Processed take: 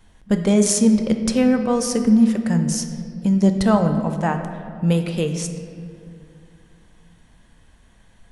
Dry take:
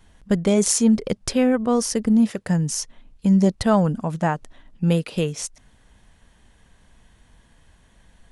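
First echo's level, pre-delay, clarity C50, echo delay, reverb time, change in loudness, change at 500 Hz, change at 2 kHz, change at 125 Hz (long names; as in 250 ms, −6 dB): no echo audible, 4 ms, 8.0 dB, no echo audible, 2.3 s, +2.0 dB, +1.0 dB, +1.0 dB, +1.5 dB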